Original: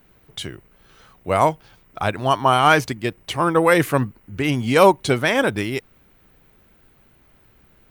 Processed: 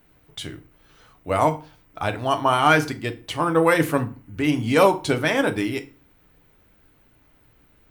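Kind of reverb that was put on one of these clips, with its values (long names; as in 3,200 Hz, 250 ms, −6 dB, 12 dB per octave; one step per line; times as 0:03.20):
feedback delay network reverb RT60 0.37 s, low-frequency decay 1.25×, high-frequency decay 0.8×, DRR 6.5 dB
level −3.5 dB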